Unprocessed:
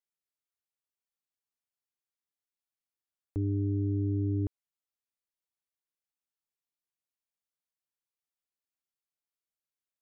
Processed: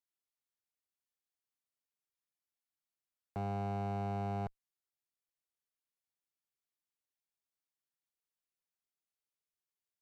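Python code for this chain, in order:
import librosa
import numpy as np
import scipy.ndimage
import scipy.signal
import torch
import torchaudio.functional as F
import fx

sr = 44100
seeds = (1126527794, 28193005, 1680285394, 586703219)

y = fx.cheby_harmonics(x, sr, harmonics=(3,), levels_db=(-19,), full_scale_db=-24.0)
y = 10.0 ** (-32.5 / 20.0) * (np.abs((y / 10.0 ** (-32.5 / 20.0) + 3.0) % 4.0 - 2.0) - 1.0)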